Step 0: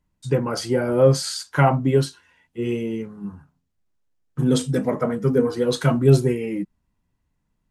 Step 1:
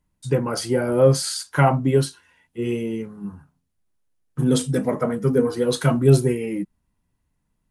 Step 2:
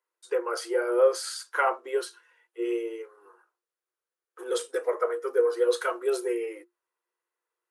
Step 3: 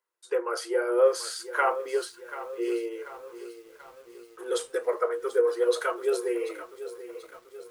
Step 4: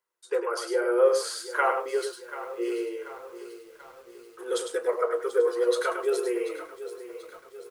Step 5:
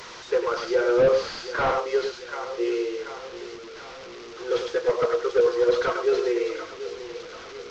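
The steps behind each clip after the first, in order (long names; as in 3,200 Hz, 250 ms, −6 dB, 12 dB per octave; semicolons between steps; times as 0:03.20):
parametric band 10,000 Hz +9.5 dB 0.31 octaves
Chebyshev high-pass with heavy ripple 340 Hz, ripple 9 dB
feedback echo at a low word length 736 ms, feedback 55%, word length 8 bits, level −13.5 dB
single-tap delay 102 ms −7 dB
linear delta modulator 32 kbit/s, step −38.5 dBFS; level +4 dB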